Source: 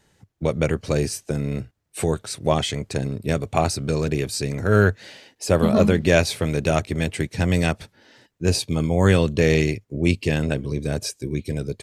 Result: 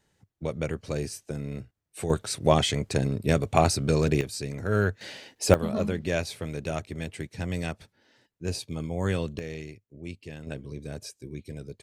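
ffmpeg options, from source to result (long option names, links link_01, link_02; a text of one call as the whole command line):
ffmpeg -i in.wav -af "asetnsamples=nb_out_samples=441:pad=0,asendcmd='2.1 volume volume -0.5dB;4.21 volume volume -8dB;5.01 volume volume 1dB;5.54 volume volume -11dB;9.39 volume volume -19.5dB;10.47 volume volume -12.5dB',volume=-9dB" out.wav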